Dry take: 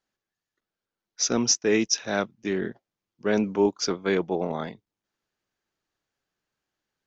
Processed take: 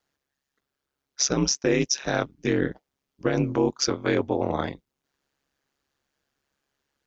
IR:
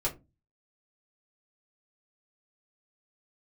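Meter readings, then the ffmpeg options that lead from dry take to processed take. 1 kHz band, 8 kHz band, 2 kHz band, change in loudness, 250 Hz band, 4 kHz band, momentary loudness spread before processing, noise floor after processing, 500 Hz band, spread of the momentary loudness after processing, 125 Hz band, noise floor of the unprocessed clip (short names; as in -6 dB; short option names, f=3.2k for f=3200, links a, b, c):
+1.5 dB, n/a, +0.5 dB, +0.5 dB, +1.0 dB, 0.0 dB, 10 LU, -84 dBFS, 0.0 dB, 8 LU, +6.5 dB, under -85 dBFS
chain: -af "aeval=exprs='val(0)*sin(2*PI*69*n/s)':c=same,alimiter=limit=-19.5dB:level=0:latency=1:release=135,volume=8dB"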